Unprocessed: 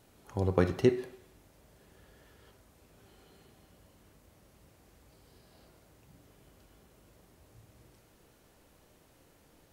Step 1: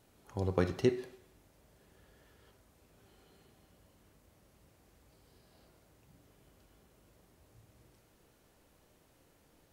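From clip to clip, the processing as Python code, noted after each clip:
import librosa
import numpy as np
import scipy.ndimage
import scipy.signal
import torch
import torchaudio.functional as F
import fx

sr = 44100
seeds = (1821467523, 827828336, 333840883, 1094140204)

y = fx.dynamic_eq(x, sr, hz=5000.0, q=0.86, threshold_db=-59.0, ratio=4.0, max_db=4)
y = F.gain(torch.from_numpy(y), -4.0).numpy()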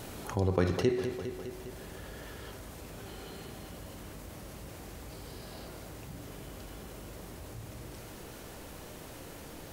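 y = fx.rider(x, sr, range_db=5, speed_s=2.0)
y = fx.echo_feedback(y, sr, ms=203, feedback_pct=47, wet_db=-16.5)
y = fx.env_flatten(y, sr, amount_pct=50)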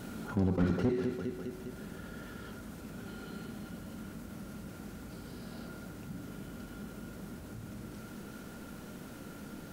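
y = fx.small_body(x, sr, hz=(210.0, 1400.0), ring_ms=35, db=14)
y = fx.slew_limit(y, sr, full_power_hz=33.0)
y = F.gain(torch.from_numpy(y), -5.0).numpy()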